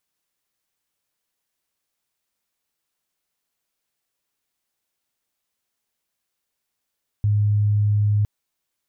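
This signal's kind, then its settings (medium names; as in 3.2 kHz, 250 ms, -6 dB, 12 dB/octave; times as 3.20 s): tone sine 104 Hz -15.5 dBFS 1.01 s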